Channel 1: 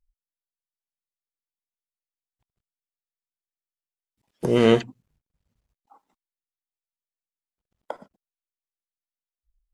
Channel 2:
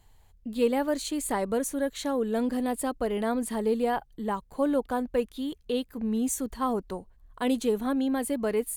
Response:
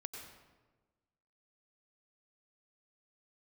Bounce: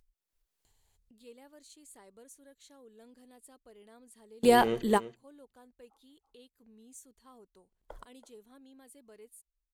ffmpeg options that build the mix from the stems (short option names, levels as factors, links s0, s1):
-filter_complex "[0:a]volume=0.141,asplit=3[s0][s1][s2];[s1]volume=0.224[s3];[1:a]equalizer=f=7100:t=o:w=2.8:g=12.5,adelay=650,volume=1.41[s4];[s2]apad=whole_len=415339[s5];[s4][s5]sidechaingate=range=0.02:threshold=0.00126:ratio=16:detection=peak[s6];[s3]aecho=0:1:330:1[s7];[s0][s6][s7]amix=inputs=3:normalize=0,equalizer=f=400:w=2.5:g=5,acompressor=mode=upward:threshold=0.00158:ratio=2.5"